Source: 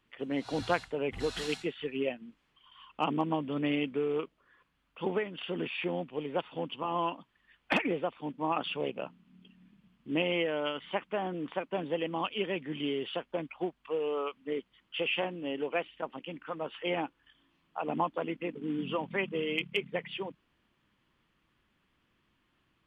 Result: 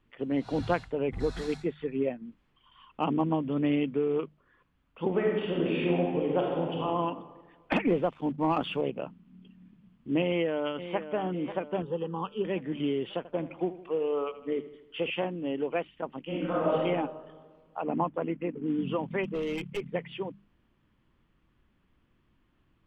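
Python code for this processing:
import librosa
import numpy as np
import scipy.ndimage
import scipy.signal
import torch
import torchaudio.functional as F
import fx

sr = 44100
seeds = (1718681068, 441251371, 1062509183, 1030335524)

y = fx.peak_eq(x, sr, hz=2900.0, db=-12.5, octaves=0.26, at=(1.09, 2.25))
y = fx.reverb_throw(y, sr, start_s=5.09, length_s=1.76, rt60_s=1.5, drr_db=-2.0)
y = fx.leveller(y, sr, passes=1, at=(7.87, 8.81))
y = fx.echo_throw(y, sr, start_s=10.24, length_s=0.85, ms=540, feedback_pct=55, wet_db=-11.0)
y = fx.fixed_phaser(y, sr, hz=430.0, stages=8, at=(11.82, 12.45))
y = fx.echo_feedback(y, sr, ms=79, feedback_pct=56, wet_db=-14.5, at=(13.17, 15.1))
y = fx.reverb_throw(y, sr, start_s=16.24, length_s=0.5, rt60_s=1.5, drr_db=-8.5)
y = fx.lowpass(y, sr, hz=2800.0, slope=24, at=(17.83, 18.66))
y = fx.clip_hard(y, sr, threshold_db=-30.5, at=(19.23, 19.8), fade=0.02)
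y = fx.tilt_eq(y, sr, slope=-2.5)
y = fx.hum_notches(y, sr, base_hz=50, count=4)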